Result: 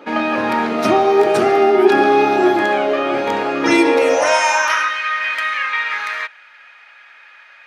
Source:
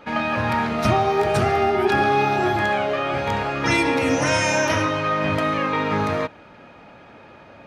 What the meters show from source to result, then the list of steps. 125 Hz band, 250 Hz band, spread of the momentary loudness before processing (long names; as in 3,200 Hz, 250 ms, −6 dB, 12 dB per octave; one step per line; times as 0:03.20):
−11.5 dB, +5.0 dB, 4 LU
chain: high-pass filter sweep 310 Hz → 1,800 Hz, 0:03.77–0:04.97
level +3 dB